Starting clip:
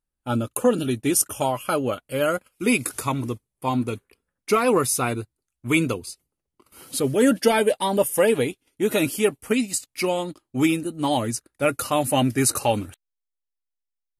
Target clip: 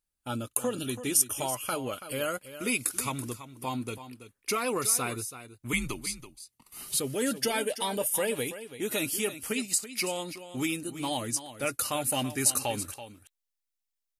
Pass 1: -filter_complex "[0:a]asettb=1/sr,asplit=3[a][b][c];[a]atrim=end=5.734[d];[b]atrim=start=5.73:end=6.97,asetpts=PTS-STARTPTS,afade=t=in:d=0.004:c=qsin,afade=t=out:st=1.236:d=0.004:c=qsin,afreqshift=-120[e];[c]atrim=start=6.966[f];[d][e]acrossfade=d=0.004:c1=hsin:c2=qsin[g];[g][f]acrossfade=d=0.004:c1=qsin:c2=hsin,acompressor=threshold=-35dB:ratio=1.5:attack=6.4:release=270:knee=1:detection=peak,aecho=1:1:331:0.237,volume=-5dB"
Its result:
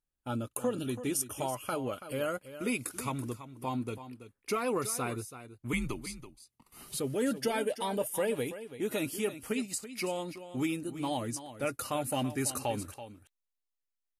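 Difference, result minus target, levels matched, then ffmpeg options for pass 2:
4000 Hz band -3.0 dB
-filter_complex "[0:a]asettb=1/sr,asplit=3[a][b][c];[a]atrim=end=5.734[d];[b]atrim=start=5.73:end=6.97,asetpts=PTS-STARTPTS,afade=t=in:d=0.004:c=qsin,afade=t=out:st=1.236:d=0.004:c=qsin,afreqshift=-120[e];[c]atrim=start=6.966[f];[d][e]acrossfade=d=0.004:c1=hsin:c2=qsin[g];[g][f]acrossfade=d=0.004:c1=qsin:c2=hsin,acompressor=threshold=-35dB:ratio=1.5:attack=6.4:release=270:knee=1:detection=peak,highshelf=f=2k:g=10,aecho=1:1:331:0.237,volume=-5dB"

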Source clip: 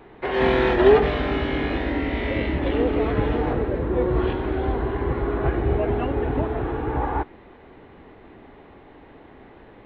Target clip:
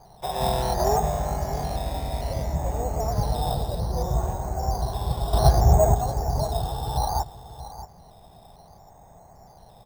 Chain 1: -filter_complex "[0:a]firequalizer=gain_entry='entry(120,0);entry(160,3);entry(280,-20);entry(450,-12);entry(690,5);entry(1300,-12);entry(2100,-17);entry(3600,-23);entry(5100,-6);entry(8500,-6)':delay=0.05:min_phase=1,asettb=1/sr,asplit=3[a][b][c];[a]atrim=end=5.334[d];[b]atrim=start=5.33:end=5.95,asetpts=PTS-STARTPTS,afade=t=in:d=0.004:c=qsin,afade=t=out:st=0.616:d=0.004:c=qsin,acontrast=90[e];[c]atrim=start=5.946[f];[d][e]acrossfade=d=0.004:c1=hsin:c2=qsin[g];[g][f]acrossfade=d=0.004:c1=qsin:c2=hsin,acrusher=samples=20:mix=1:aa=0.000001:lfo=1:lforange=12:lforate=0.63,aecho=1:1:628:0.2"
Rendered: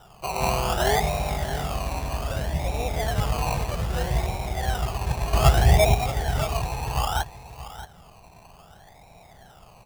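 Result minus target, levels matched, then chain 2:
decimation with a swept rate: distortion +8 dB
-filter_complex "[0:a]firequalizer=gain_entry='entry(120,0);entry(160,3);entry(280,-20);entry(450,-12);entry(690,5);entry(1300,-12);entry(2100,-17);entry(3600,-23);entry(5100,-6);entry(8500,-6)':delay=0.05:min_phase=1,asettb=1/sr,asplit=3[a][b][c];[a]atrim=end=5.334[d];[b]atrim=start=5.33:end=5.95,asetpts=PTS-STARTPTS,afade=t=in:d=0.004:c=qsin,afade=t=out:st=0.616:d=0.004:c=qsin,acontrast=90[e];[c]atrim=start=5.946[f];[d][e]acrossfade=d=0.004:c1=hsin:c2=qsin[g];[g][f]acrossfade=d=0.004:c1=qsin:c2=hsin,acrusher=samples=8:mix=1:aa=0.000001:lfo=1:lforange=4.8:lforate=0.63,aecho=1:1:628:0.2"

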